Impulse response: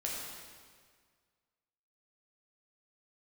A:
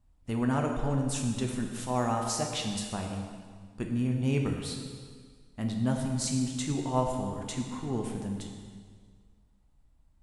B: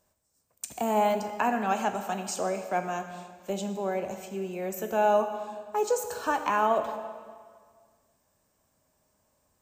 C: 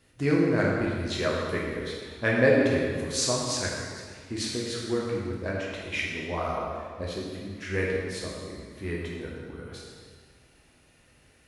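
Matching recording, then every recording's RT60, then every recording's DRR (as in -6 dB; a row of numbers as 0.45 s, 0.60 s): C; 1.8 s, 1.8 s, 1.8 s; 1.5 dB, 7.0 dB, -4.0 dB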